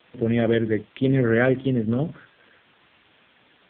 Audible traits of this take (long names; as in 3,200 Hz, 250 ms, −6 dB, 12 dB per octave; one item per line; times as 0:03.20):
a quantiser's noise floor 8 bits, dither triangular
AMR narrowband